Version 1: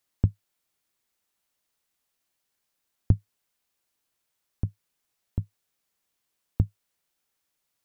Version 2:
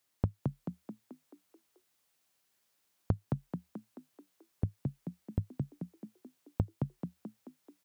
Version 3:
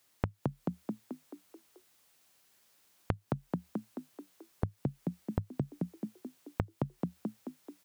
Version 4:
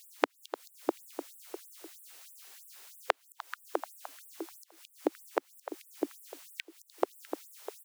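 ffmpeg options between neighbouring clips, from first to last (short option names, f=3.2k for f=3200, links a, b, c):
-filter_complex "[0:a]highpass=54,acompressor=threshold=-28dB:ratio=6,asplit=8[a][b][c][d][e][f][g][h];[b]adelay=217,afreqshift=38,volume=-3dB[i];[c]adelay=434,afreqshift=76,volume=-9dB[j];[d]adelay=651,afreqshift=114,volume=-15dB[k];[e]adelay=868,afreqshift=152,volume=-21.1dB[l];[f]adelay=1085,afreqshift=190,volume=-27.1dB[m];[g]adelay=1302,afreqshift=228,volume=-33.1dB[n];[h]adelay=1519,afreqshift=266,volume=-39.1dB[o];[a][i][j][k][l][m][n][o]amix=inputs=8:normalize=0,volume=1dB"
-af "acompressor=threshold=-37dB:ratio=12,volume=8.5dB"
-filter_complex "[0:a]asplit=2[a][b];[b]adelay=300,highpass=300,lowpass=3.4k,asoftclip=type=hard:threshold=-20dB,volume=-9dB[c];[a][c]amix=inputs=2:normalize=0,acompressor=threshold=-36dB:ratio=2,afftfilt=real='re*gte(b*sr/1024,280*pow(7900/280,0.5+0.5*sin(2*PI*3.1*pts/sr)))':imag='im*gte(b*sr/1024,280*pow(7900/280,0.5+0.5*sin(2*PI*3.1*pts/sr)))':win_size=1024:overlap=0.75,volume=15dB"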